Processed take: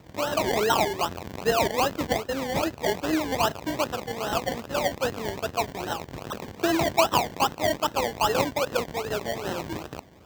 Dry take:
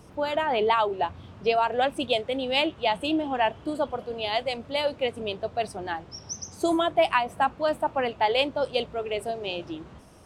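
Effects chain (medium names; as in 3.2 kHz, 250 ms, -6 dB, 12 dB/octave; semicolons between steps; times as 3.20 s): rattle on loud lows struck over -47 dBFS, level -22 dBFS; 2.24–3.00 s: distance through air 220 m; decimation with a swept rate 27×, swing 60% 2.5 Hz; high-pass 55 Hz; peaking EQ 10 kHz -13 dB 0.23 oct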